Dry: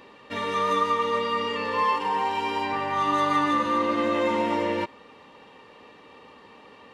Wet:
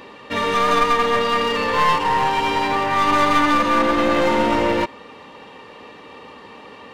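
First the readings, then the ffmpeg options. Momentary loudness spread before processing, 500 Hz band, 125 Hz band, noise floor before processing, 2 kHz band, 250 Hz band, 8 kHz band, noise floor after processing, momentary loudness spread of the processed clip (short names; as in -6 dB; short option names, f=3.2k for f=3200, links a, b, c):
6 LU, +6.5 dB, +9.0 dB, -51 dBFS, +9.0 dB, +6.5 dB, n/a, -42 dBFS, 5 LU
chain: -af "aeval=exprs='clip(val(0),-1,0.0376)':c=same,volume=9dB"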